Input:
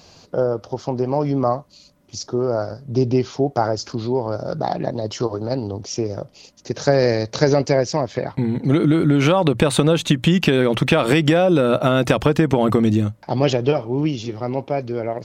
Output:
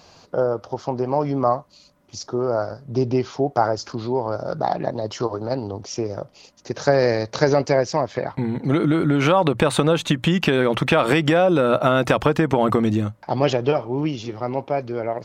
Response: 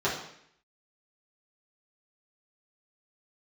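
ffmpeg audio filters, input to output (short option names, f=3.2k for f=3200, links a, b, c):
-af "equalizer=f=1.1k:t=o:w=2.1:g=6.5,volume=-4dB"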